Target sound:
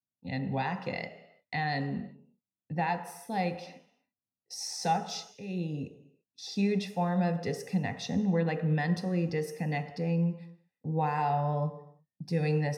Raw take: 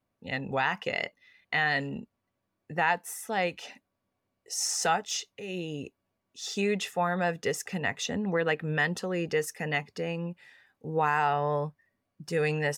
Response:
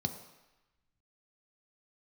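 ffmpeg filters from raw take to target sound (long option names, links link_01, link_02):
-filter_complex "[0:a]agate=range=-21dB:threshold=-50dB:ratio=16:detection=peak[link_01];[1:a]atrim=start_sample=2205,afade=type=out:start_time=0.41:duration=0.01,atrim=end_sample=18522[link_02];[link_01][link_02]afir=irnorm=-1:irlink=0,volume=-9dB"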